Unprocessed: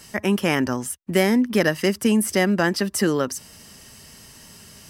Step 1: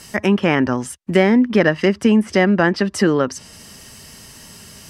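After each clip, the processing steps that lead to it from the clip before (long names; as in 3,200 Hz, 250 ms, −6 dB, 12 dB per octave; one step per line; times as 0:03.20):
treble cut that deepens with the level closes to 2,700 Hz, closed at −17 dBFS
level +5 dB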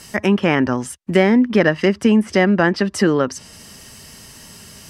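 no processing that can be heard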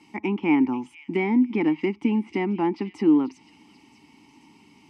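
formant filter u
echo through a band-pass that steps 487 ms, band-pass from 3,500 Hz, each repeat 0.7 octaves, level −11 dB
level +4.5 dB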